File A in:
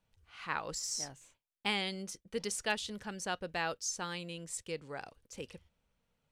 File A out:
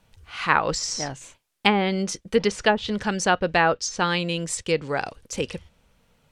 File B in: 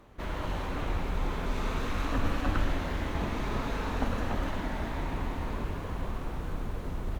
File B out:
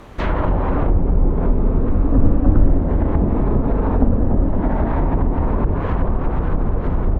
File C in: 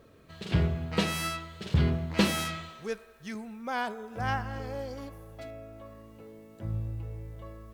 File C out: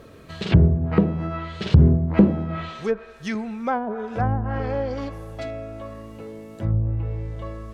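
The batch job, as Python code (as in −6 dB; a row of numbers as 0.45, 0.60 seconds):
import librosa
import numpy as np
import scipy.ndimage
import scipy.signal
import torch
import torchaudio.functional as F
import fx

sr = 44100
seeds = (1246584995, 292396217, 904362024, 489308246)

y = fx.env_lowpass_down(x, sr, base_hz=450.0, full_db=-26.5)
y = y * 10.0 ** (-2 / 20.0) / np.max(np.abs(y))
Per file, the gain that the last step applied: +17.0, +16.0, +11.5 decibels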